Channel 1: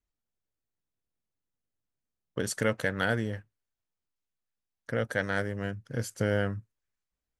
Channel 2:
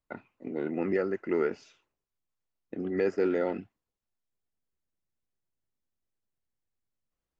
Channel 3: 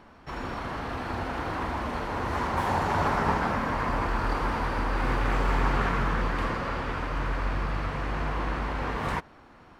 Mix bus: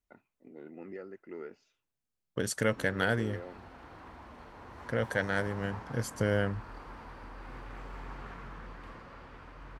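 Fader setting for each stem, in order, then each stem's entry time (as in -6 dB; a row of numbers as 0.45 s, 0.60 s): -1.0 dB, -15.5 dB, -19.0 dB; 0.00 s, 0.00 s, 2.45 s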